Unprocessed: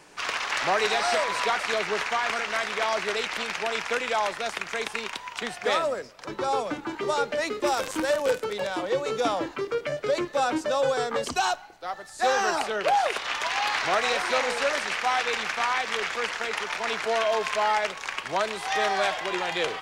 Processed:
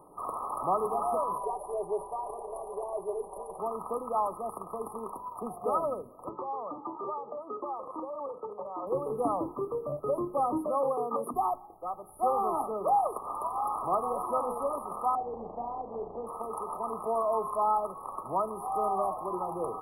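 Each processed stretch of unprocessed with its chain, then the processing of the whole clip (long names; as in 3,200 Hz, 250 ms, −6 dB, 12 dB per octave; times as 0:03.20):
0:01.38–0:03.59: Butterworth low-pass 11,000 Hz 48 dB per octave + phaser with its sweep stopped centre 530 Hz, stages 4 + comb filter 5.1 ms
0:06.29–0:08.87: low-pass filter 3,600 Hz 24 dB per octave + spectral tilt +4.5 dB per octave + downward compressor, threshold −28 dBFS
0:10.67–0:11.34: high-pass filter 180 Hz 24 dB per octave + flat-topped bell 3,400 Hz +13 dB 2.4 octaves
0:15.15–0:16.27: Butterworth low-pass 790 Hz + flutter between parallel walls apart 5.9 metres, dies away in 0.29 s
whole clip: hum removal 51.31 Hz, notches 9; brick-wall band-stop 1,300–9,500 Hz; dynamic equaliser 550 Hz, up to −5 dB, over −38 dBFS, Q 1.3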